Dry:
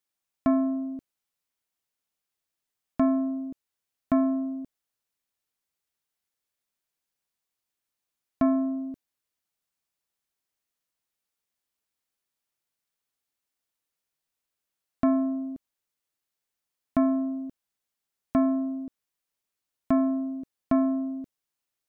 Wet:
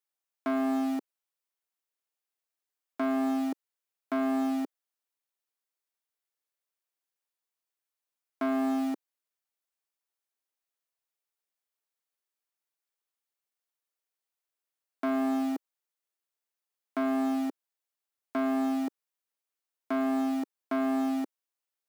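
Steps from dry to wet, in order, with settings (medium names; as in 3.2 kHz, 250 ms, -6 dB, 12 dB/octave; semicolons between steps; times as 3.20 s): in parallel at -10 dB: bit crusher 7-bit; on the sum: peak limiter -21.5 dBFS, peak gain reduction 11.5 dB; tilt EQ +2 dB/octave; waveshaping leveller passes 3; high-pass 300 Hz 24 dB/octave; treble shelf 2 kHz -10 dB; trim +3.5 dB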